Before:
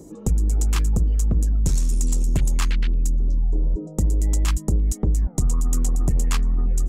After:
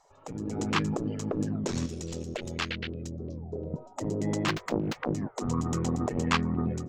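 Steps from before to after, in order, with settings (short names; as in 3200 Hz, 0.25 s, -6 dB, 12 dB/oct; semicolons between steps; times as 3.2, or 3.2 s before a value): 4.48–5.14 self-modulated delay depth 0.83 ms; spectral gate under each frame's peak -20 dB weak; 1.86–3.74 graphic EQ 125/250/500/1000/2000/8000 Hz -9/-9/+3/-11/-3/-4 dB; AGC gain up to 7 dB; air absorption 200 m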